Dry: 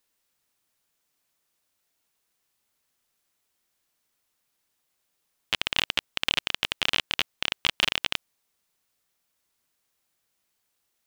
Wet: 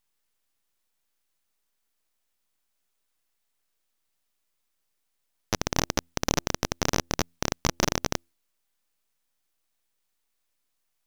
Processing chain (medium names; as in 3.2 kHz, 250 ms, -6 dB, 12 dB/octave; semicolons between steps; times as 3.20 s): de-hum 84.92 Hz, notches 2; full-wave rectifier